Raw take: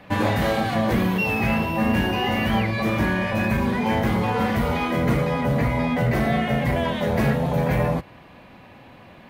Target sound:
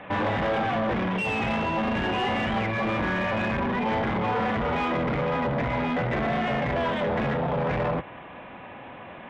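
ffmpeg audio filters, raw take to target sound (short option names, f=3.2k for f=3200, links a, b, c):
-filter_complex "[0:a]aresample=8000,asoftclip=type=tanh:threshold=-24dB,aresample=44100,asplit=2[a][b];[b]highpass=f=720:p=1,volume=12dB,asoftclip=type=tanh:threshold=-20dB[c];[a][c]amix=inputs=2:normalize=0,lowpass=f=1.5k:p=1,volume=-6dB,volume=2.5dB"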